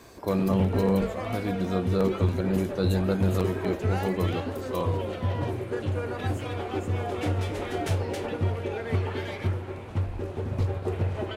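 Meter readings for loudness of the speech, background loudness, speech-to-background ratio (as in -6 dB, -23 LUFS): -28.5 LUFS, -30.5 LUFS, 2.0 dB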